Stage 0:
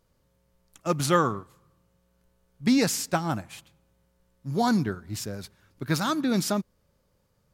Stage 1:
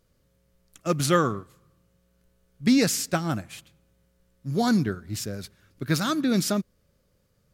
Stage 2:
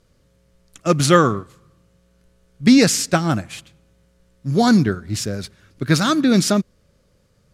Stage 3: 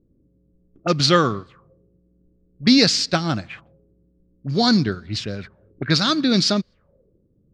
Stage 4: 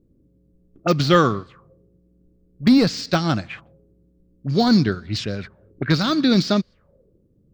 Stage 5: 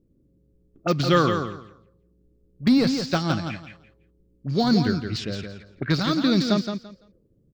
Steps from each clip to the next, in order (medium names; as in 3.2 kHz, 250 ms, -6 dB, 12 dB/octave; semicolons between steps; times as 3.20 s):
peaking EQ 900 Hz -8.5 dB 0.56 oct; trim +2 dB
low-pass 9.8 kHz 12 dB/octave; trim +8 dB
touch-sensitive low-pass 300–4500 Hz up, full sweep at -19.5 dBFS; trim -3.5 dB
de-esser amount 60%; trim +2 dB
feedback delay 169 ms, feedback 20%, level -7 dB; trim -4 dB